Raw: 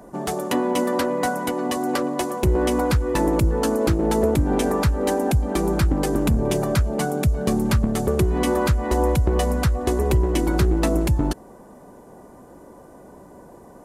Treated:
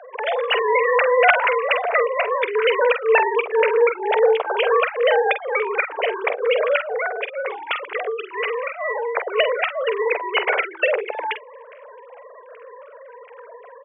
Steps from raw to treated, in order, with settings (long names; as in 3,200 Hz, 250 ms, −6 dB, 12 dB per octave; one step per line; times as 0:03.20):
three sine waves on the formant tracks
Butterworth high-pass 440 Hz 72 dB per octave
double-tracking delay 47 ms −9.5 dB
0:06.96–0:09.17: downward compressor 6 to 1, threshold −26 dBFS, peak gain reduction 11.5 dB
parametric band 2,300 Hz +14 dB 1 octave
level +1.5 dB